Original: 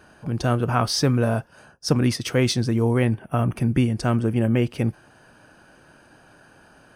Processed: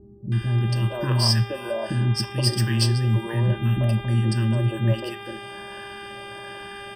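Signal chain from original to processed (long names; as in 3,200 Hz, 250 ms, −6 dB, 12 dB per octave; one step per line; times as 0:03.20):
EQ curve with evenly spaced ripples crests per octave 1.3, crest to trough 17 dB
reversed playback
downward compressor, threshold −25 dBFS, peak gain reduction 13.5 dB
reversed playback
auto-filter notch saw up 1.3 Hz 430–3,200 Hz
hum with harmonics 400 Hz, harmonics 9, −45 dBFS −3 dB per octave
three-band delay without the direct sound lows, highs, mids 320/470 ms, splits 330/1,100 Hz
on a send at −12.5 dB: convolution reverb, pre-delay 3 ms
on the sum: level +6 dB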